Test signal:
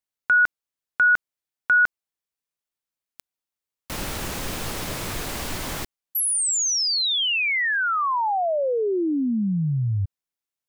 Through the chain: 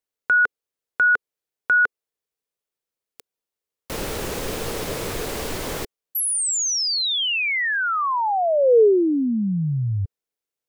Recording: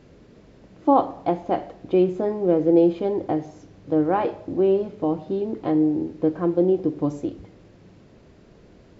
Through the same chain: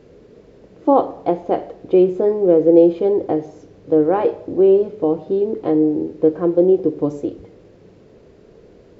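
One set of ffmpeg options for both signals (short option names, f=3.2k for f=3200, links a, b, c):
-af "equalizer=f=450:t=o:w=0.67:g=10.5"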